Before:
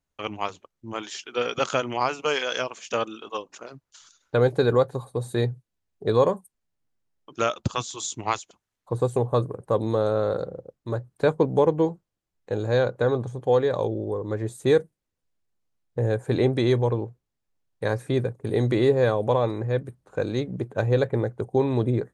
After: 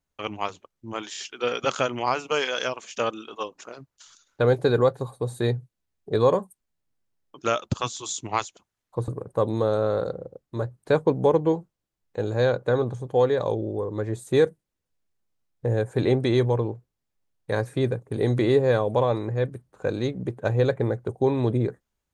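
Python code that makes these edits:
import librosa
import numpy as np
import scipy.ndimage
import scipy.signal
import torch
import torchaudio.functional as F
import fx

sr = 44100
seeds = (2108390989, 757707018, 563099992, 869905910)

y = fx.edit(x, sr, fx.stutter(start_s=1.11, slice_s=0.03, count=3),
    fx.cut(start_s=9.02, length_s=0.39), tone=tone)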